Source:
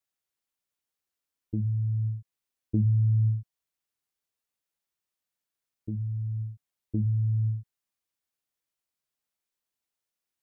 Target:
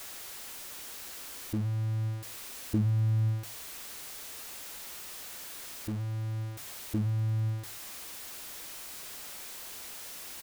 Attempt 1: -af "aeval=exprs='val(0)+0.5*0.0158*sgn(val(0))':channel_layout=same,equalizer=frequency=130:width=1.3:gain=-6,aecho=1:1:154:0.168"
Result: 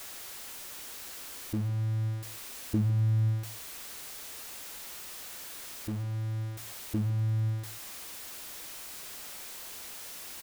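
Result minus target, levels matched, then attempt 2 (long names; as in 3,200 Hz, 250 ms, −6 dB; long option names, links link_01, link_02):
echo-to-direct +11.5 dB
-af "aeval=exprs='val(0)+0.5*0.0158*sgn(val(0))':channel_layout=same,equalizer=frequency=130:width=1.3:gain=-6,aecho=1:1:154:0.0447"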